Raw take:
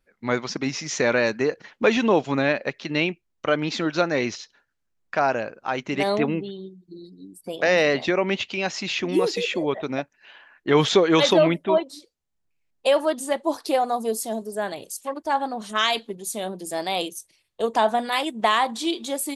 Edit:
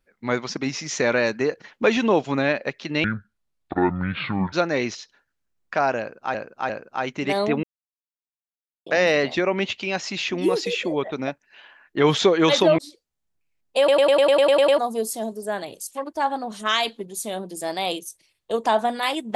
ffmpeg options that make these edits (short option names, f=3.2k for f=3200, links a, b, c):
-filter_complex "[0:a]asplit=18[a][b][c][d][e][f][g][h][i][j][k][l][m][n][o][p][q][r];[a]atrim=end=3.044[s];[b]atrim=start=3.04:end=3.93,asetpts=PTS-STARTPTS,asetrate=26460,aresample=44100[t];[c]atrim=start=3.926:end=5.752[u];[d]atrim=start=5.398:end=5.752[v];[e]atrim=start=5.398:end=6.34,asetpts=PTS-STARTPTS,afade=t=out:st=0.938:d=0.004:c=hsin[w];[f]atrim=start=6.34:end=7.57,asetpts=PTS-STARTPTS,volume=0[x];[g]atrim=start=7.57:end=11.492,asetpts=PTS-STARTPTS,afade=t=in:d=0.004:c=hsin[y];[h]atrim=start=11.878:end=12.982[z];[i]atrim=start=12.878:end=12.982[aa];[j]atrim=start=12.878:end=12.982[ab];[k]atrim=start=12.878:end=12.982[ac];[l]atrim=start=12.878:end=12.982[ad];[m]atrim=start=12.878:end=12.982[ae];[n]atrim=start=12.878:end=12.982[af];[o]atrim=start=12.878:end=12.982[ag];[p]atrim=start=12.878:end=12.982[ah];[q]atrim=start=12.878:end=12.982[ai];[r]atrim=start=13.878[aj];[s][t]acrossfade=d=0.004:c1=hsin:c2=hsin[ak];[ak][u]acrossfade=d=0.004:c1=hsin:c2=hsin[al];[al][v]acrossfade=d=0.004:c1=hsin:c2=hsin[am];[w][x][y]concat=n=3:v=0:a=1[an];[am][an]acrossfade=d=0.004:c1=hsin:c2=hsin[ao];[ao][z]acrossfade=d=0.004:c1=hsin:c2=hsin[ap];[ap][aa]acrossfade=d=0.004:c1=hsin:c2=hsin[aq];[aq][ab]acrossfade=d=0.004:c1=hsin:c2=hsin[ar];[ar][ac]acrossfade=d=0.004:c1=hsin:c2=hsin[as];[as][ad]acrossfade=d=0.004:c1=hsin:c2=hsin[at];[at][ae]acrossfade=d=0.004:c1=hsin:c2=hsin[au];[au][af]acrossfade=d=0.004:c1=hsin:c2=hsin[av];[av][ag]acrossfade=d=0.004:c1=hsin:c2=hsin[aw];[aw][ah]acrossfade=d=0.004:c1=hsin:c2=hsin[ax];[ax][ai]acrossfade=d=0.004:c1=hsin:c2=hsin[ay];[ay][aj]acrossfade=d=0.004:c1=hsin:c2=hsin"